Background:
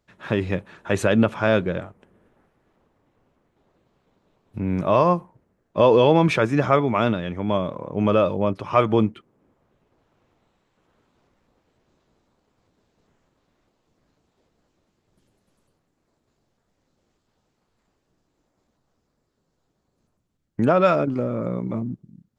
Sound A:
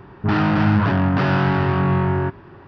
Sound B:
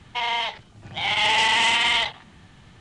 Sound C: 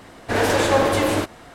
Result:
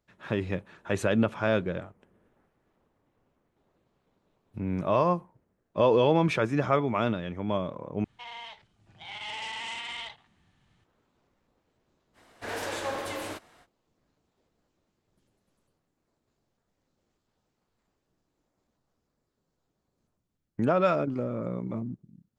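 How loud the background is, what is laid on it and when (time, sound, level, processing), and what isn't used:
background -6.5 dB
8.04 replace with B -17.5 dB
12.13 add C -12.5 dB, fades 0.05 s + low shelf 460 Hz -8.5 dB
not used: A

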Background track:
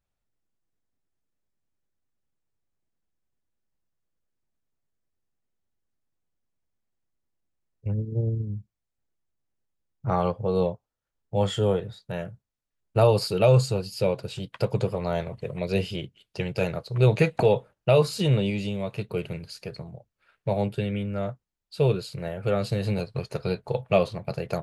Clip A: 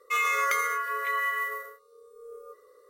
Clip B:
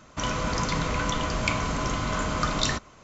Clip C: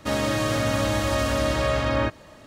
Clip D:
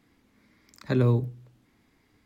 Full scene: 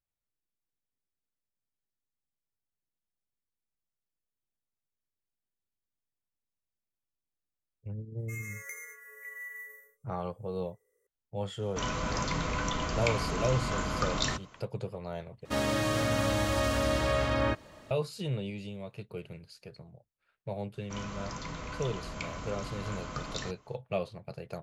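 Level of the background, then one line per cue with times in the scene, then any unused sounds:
background track -11.5 dB
8.18 add A -16.5 dB + EQ curve 400 Hz 0 dB, 730 Hz -12 dB, 1200 Hz -19 dB, 2000 Hz +5 dB, 3600 Hz -28 dB, 6200 Hz +7 dB
11.59 add B -5 dB
15.45 replace with C -5 dB
20.73 add B -13 dB
not used: D

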